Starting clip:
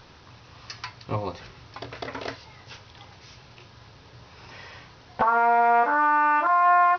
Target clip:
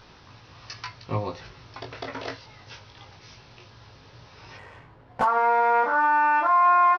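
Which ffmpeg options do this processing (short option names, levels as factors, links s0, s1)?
-filter_complex "[0:a]asettb=1/sr,asplit=3[s0][s1][s2];[s0]atrim=end=4.574[s3];[s1]atrim=start=4.57:end=5.25,asetpts=PTS-STARTPTS,afade=t=in:d=0.004:c=qsin,afade=t=out:st=0.676:d=0.004:c=qsin,adynamicsmooth=sensitivity=7:basefreq=1300[s4];[s2]atrim=start=5.246[s5];[s3][s4]acrossfade=d=0.004:c1=hsin:c2=qsin[s6];[s6][s5]acrossfade=d=0.004:c1=qsin:c2=hsin,asplit=2[s7][s8];[s8]adelay=19,volume=0.562[s9];[s7][s9]amix=inputs=2:normalize=0,volume=0.841"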